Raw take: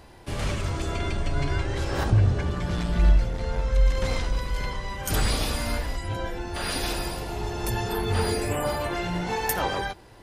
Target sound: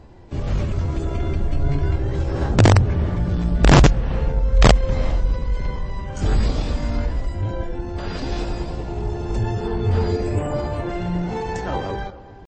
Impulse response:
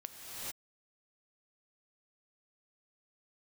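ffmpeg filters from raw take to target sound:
-filter_complex "[0:a]tiltshelf=f=730:g=6.5,atempo=0.82,aeval=exprs='(mod(2.11*val(0)+1,2)-1)/2.11':c=same,asplit=2[s0][s1];[1:a]atrim=start_sample=2205,lowpass=2600[s2];[s1][s2]afir=irnorm=-1:irlink=0,volume=0.188[s3];[s0][s3]amix=inputs=2:normalize=0" -ar 22050 -c:a libmp3lame -b:a 32k

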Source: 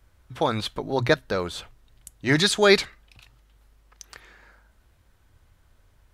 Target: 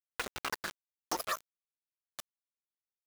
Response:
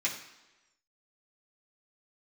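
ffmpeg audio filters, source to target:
-filter_complex "[0:a]asetrate=88200,aresample=44100,afftdn=nr=23:nf=-35,acrossover=split=4900[s0][s1];[s0]acontrast=70[s2];[s2][s1]amix=inputs=2:normalize=0,afftfilt=real='hypot(re,im)*cos(2*PI*random(0))':imag='hypot(re,im)*sin(2*PI*random(1))':win_size=512:overlap=0.75,aemphasis=mode=production:type=75kf,asetrate=66075,aresample=44100,atempo=0.66742,highshelf=f=4000:g=-10.5,asplit=2[s3][s4];[s4]aecho=0:1:868:0.188[s5];[s3][s5]amix=inputs=2:normalize=0,aeval=exprs='val(0)*gte(abs(val(0)),0.0841)':c=same,acompressor=threshold=0.0355:ratio=6,volume=0.668"

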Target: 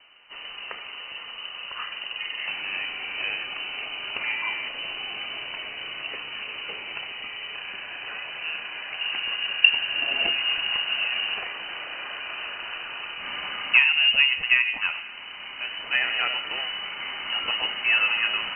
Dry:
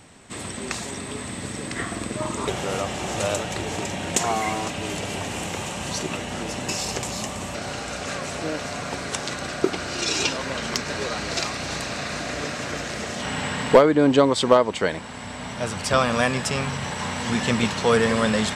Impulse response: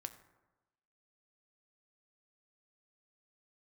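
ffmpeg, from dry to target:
-filter_complex "[0:a]asettb=1/sr,asplit=3[s0][s1][s2];[s0]atrim=end=8.994[s3];[s1]atrim=start=8.99:end=11.34,asetpts=PTS-STARTPTS,afade=t=in:d=0.004:c=qsin,afade=t=out:st=2.346:d=0.004:c=qsin,equalizer=f=270:w=1.2:g=15[s4];[s2]atrim=start=11.336[s5];[s3][s4]acrossfade=d=0.004:c1=hsin:c2=qsin[s6];[s6][s5]acrossfade=d=0.004:c1=qsin:c2=hsin[s7];[1:a]atrim=start_sample=2205,asetrate=37044,aresample=44100[s8];[s7][s8]afir=irnorm=-1:irlink=0,lowpass=f=2600:t=q:w=0.5098,lowpass=f=2600:t=q:w=0.6013,lowpass=f=2600:t=q:w=0.9,lowpass=f=2600:t=q:w=2.563,afreqshift=-3100,volume=0.841"

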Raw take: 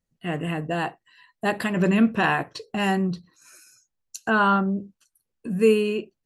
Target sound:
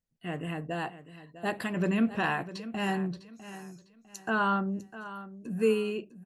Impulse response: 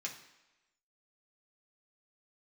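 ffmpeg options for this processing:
-af "aecho=1:1:652|1304|1956:0.188|0.0584|0.0181,volume=0.422"

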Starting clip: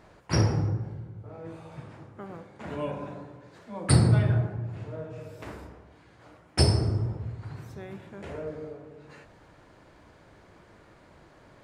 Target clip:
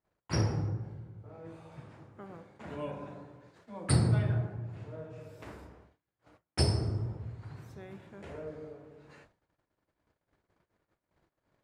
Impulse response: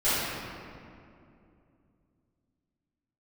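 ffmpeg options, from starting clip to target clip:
-af "agate=range=0.0355:threshold=0.00282:ratio=16:detection=peak,volume=0.501"

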